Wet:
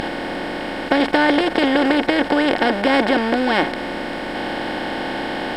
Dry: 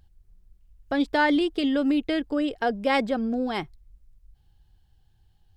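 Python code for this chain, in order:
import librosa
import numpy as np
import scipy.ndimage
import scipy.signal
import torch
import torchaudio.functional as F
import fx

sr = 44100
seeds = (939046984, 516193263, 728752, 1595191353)

y = fx.bin_compress(x, sr, power=0.2)
y = y * 10.0 ** (1.0 / 20.0)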